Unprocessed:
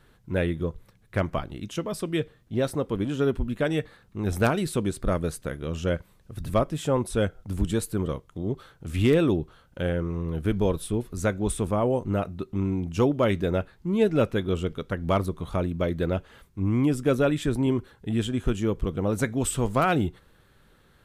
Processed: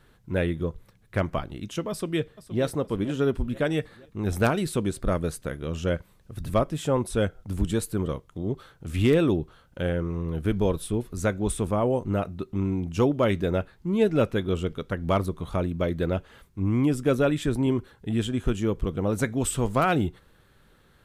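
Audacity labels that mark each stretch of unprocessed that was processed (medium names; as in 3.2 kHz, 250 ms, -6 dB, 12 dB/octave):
1.900000	2.640000	echo throw 470 ms, feedback 50%, level -15 dB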